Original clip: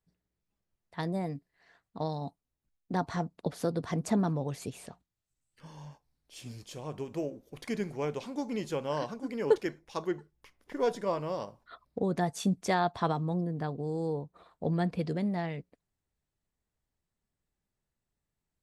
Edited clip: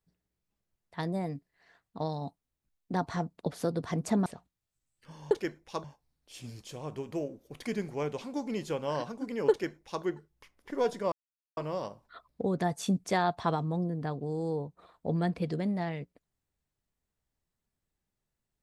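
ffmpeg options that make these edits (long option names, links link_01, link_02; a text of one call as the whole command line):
ffmpeg -i in.wav -filter_complex "[0:a]asplit=5[link_01][link_02][link_03][link_04][link_05];[link_01]atrim=end=4.262[link_06];[link_02]atrim=start=4.808:end=5.862[link_07];[link_03]atrim=start=9.518:end=10.052[link_08];[link_04]atrim=start=5.858:end=11.14,asetpts=PTS-STARTPTS,afade=type=out:start_time=5.278:duration=0.004:curve=hsin,apad=pad_dur=0.45[link_09];[link_05]atrim=start=11.14,asetpts=PTS-STARTPTS,afade=type=in:duration=0.004:curve=hsin[link_10];[link_06][link_07]acrossfade=duration=0.004:curve1=hsin:curve2=hsin[link_11];[link_11][link_08]acrossfade=duration=0.004:curve1=hsin:curve2=hsin[link_12];[link_09][link_10]concat=n=2:v=0:a=1[link_13];[link_12][link_13]acrossfade=duration=0.004:curve1=hsin:curve2=hsin" out.wav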